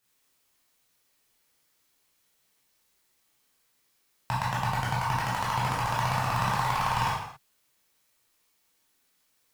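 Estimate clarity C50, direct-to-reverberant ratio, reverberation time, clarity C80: 1.5 dB, −7.0 dB, non-exponential decay, 5.0 dB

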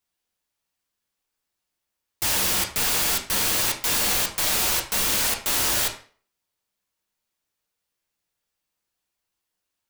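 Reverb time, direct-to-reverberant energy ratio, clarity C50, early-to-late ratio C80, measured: 0.45 s, 1.5 dB, 9.5 dB, 13.5 dB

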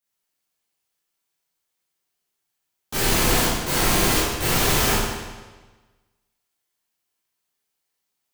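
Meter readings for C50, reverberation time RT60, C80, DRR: −2.0 dB, 1.3 s, 1.5 dB, −10.5 dB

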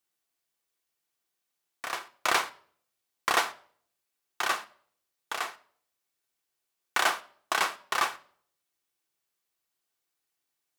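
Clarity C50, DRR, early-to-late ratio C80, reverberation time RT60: 20.0 dB, 8.0 dB, 22.0 dB, 0.55 s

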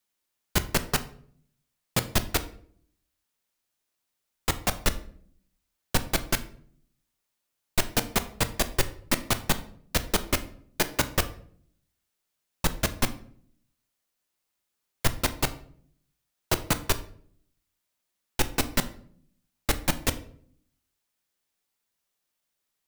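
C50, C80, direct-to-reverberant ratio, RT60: 15.5 dB, 18.5 dB, 10.0 dB, 0.55 s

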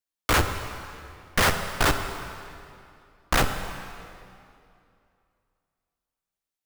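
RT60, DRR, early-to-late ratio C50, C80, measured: 2.6 s, 6.0 dB, 7.5 dB, 8.0 dB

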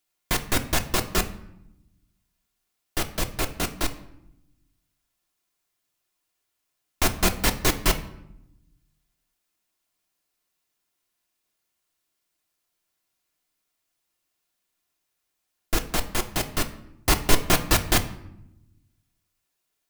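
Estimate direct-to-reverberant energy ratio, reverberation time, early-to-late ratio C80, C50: 5.0 dB, 0.85 s, 16.5 dB, 13.5 dB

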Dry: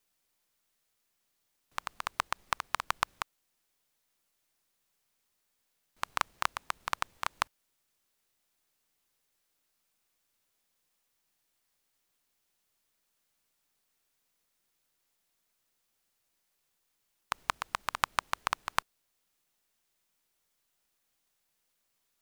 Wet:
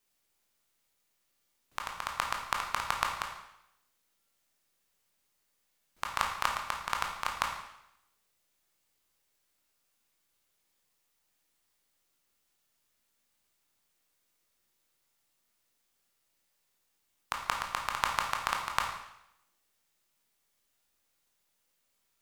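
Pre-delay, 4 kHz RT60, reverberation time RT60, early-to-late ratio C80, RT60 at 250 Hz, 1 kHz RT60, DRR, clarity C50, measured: 17 ms, 0.80 s, 0.80 s, 7.5 dB, 0.80 s, 0.80 s, 1.0 dB, 5.0 dB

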